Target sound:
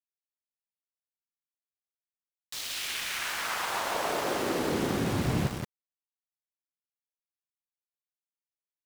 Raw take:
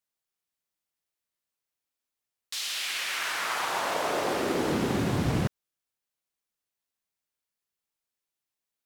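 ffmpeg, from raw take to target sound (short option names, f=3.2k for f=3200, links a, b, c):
-af "aecho=1:1:176:0.501,aeval=exprs='val(0)*gte(abs(val(0)),0.0251)':c=same,volume=-2.5dB"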